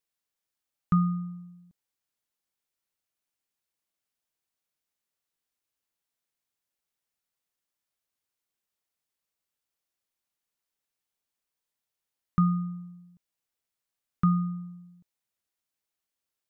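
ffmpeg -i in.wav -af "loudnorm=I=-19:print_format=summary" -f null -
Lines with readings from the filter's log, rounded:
Input Integrated:    -28.7 LUFS
Input True Peak:     -14.0 dBTP
Input LRA:             3.0 LU
Input Threshold:     -40.7 LUFS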